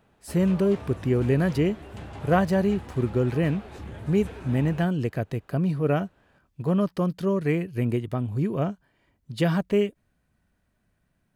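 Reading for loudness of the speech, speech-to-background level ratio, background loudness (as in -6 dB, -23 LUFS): -25.5 LUFS, 15.5 dB, -41.0 LUFS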